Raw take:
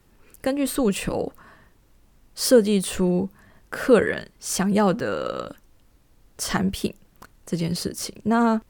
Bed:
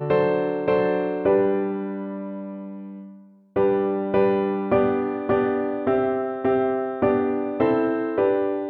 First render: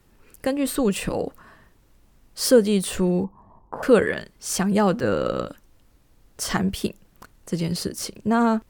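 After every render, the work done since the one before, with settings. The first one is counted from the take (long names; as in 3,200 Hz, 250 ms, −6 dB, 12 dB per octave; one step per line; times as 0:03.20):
0:03.24–0:03.83: drawn EQ curve 590 Hz 0 dB, 990 Hz +13 dB, 1,500 Hz −19 dB, 2,800 Hz −26 dB
0:05.03–0:05.46: low-shelf EQ 420 Hz +9.5 dB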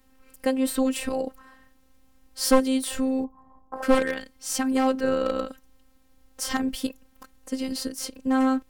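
wavefolder on the positive side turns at −15 dBFS
phases set to zero 262 Hz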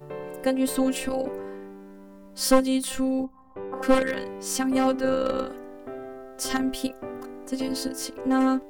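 mix in bed −16.5 dB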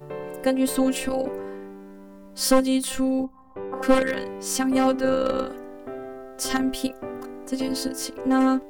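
level +2 dB
brickwall limiter −3 dBFS, peak gain reduction 3 dB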